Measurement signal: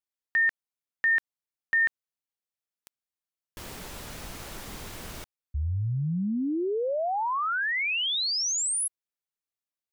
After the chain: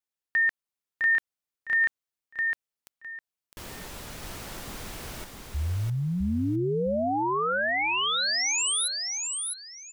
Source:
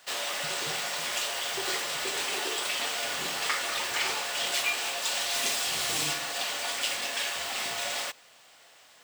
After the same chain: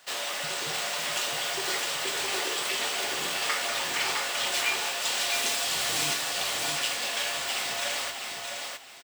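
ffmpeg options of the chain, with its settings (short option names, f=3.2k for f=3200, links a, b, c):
-af "aecho=1:1:658|1316|1974:0.631|0.145|0.0334"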